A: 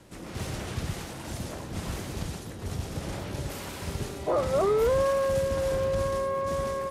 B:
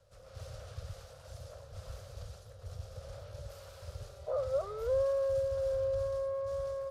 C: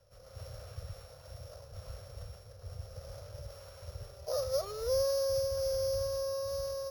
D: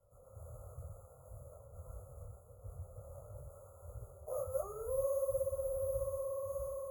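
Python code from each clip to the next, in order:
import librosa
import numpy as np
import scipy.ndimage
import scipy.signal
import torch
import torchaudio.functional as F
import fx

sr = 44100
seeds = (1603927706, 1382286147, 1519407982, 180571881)

y1 = fx.curve_eq(x, sr, hz=(110.0, 170.0, 320.0, 530.0, 910.0, 1300.0, 2000.0, 4800.0, 8200.0), db=(0, -17, -29, 5, -12, -2, -13, -3, -9))
y1 = y1 * 10.0 ** (-9.0 / 20.0)
y2 = np.r_[np.sort(y1[:len(y1) // 8 * 8].reshape(-1, 8), axis=1).ravel(), y1[len(y1) // 8 * 8:]]
y3 = fx.brickwall_bandstop(y2, sr, low_hz=1400.0, high_hz=6600.0)
y3 = fx.detune_double(y3, sr, cents=52)
y3 = y3 * 10.0 ** (-1.0 / 20.0)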